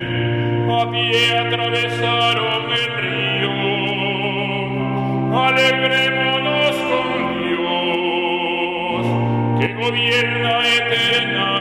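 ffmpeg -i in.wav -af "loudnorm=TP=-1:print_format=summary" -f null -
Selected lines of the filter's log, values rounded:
Input Integrated:    -17.1 LUFS
Input True Peak:      -3.6 dBTP
Input LRA:             1.8 LU
Input Threshold:     -27.1 LUFS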